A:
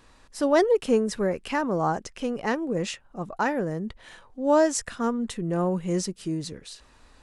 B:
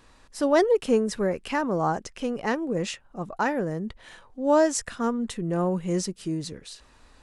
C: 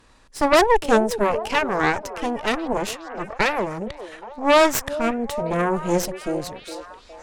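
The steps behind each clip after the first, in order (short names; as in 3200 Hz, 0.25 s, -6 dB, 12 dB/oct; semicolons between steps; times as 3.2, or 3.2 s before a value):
nothing audible
added harmonics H 6 -7 dB, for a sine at -9 dBFS; delay with a stepping band-pass 0.412 s, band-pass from 450 Hz, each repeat 0.7 oct, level -9.5 dB; gain +1.5 dB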